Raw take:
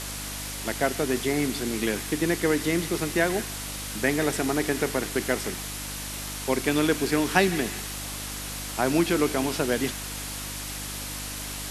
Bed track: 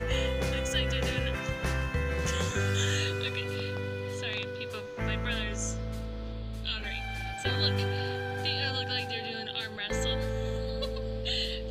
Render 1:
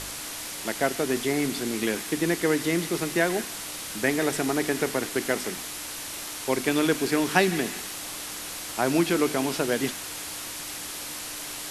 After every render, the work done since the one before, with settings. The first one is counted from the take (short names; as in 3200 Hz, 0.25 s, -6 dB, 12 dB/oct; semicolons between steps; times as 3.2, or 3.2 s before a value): de-hum 50 Hz, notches 5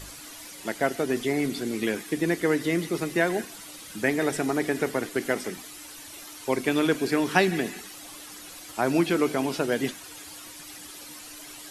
denoiser 11 dB, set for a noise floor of -36 dBFS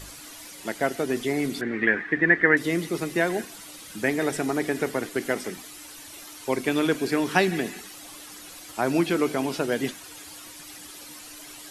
1.61–2.57 synth low-pass 1800 Hz, resonance Q 7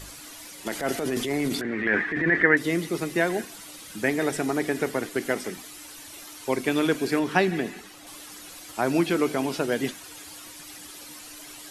0.66–2.43 transient shaper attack -8 dB, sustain +7 dB; 7.19–8.07 high shelf 4100 Hz -8 dB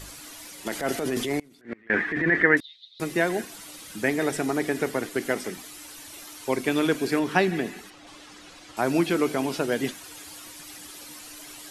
1.39–1.9 flipped gate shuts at -20 dBFS, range -27 dB; 2.6–3 Butterworth band-pass 3800 Hz, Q 5.6; 7.9–8.77 air absorption 91 m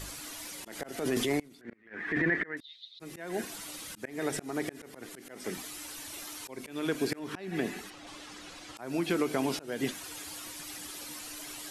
compressor 10:1, threshold -24 dBFS, peak gain reduction 11 dB; auto swell 0.278 s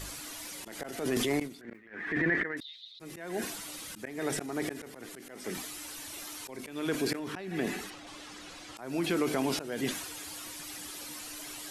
transient shaper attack -2 dB, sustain +5 dB; sustainer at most 140 dB/s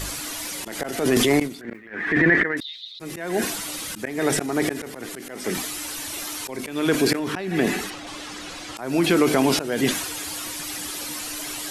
gain +11 dB